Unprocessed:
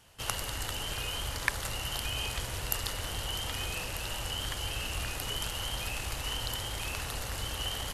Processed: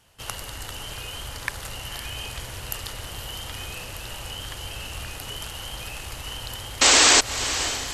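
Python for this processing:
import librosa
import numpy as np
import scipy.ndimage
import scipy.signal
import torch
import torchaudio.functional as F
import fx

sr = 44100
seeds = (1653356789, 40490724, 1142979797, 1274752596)

y = fx.spec_paint(x, sr, seeds[0], shape='noise', start_s=6.81, length_s=0.4, low_hz=230.0, high_hz=8300.0, level_db=-15.0)
y = fx.echo_diffused(y, sr, ms=541, feedback_pct=48, wet_db=-11.0)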